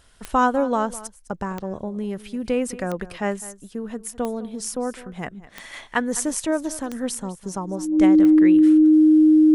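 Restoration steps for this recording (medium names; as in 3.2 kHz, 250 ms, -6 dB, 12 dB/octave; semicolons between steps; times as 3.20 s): de-click; band-stop 310 Hz, Q 30; inverse comb 206 ms -17.5 dB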